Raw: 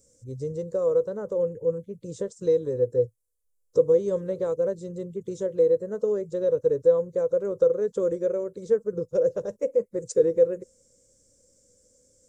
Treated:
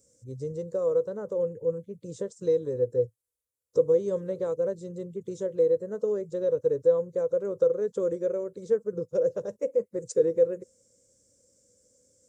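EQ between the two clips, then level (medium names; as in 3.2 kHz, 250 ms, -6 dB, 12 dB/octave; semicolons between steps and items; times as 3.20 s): high-pass 68 Hz; -2.5 dB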